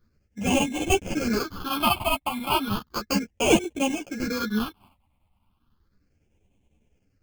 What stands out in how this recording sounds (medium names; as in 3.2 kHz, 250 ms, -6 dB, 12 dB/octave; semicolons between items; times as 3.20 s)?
aliases and images of a low sample rate 1.9 kHz, jitter 0%; phasing stages 6, 0.34 Hz, lowest notch 410–1300 Hz; chopped level 10 Hz, depth 60%, duty 80%; a shimmering, thickened sound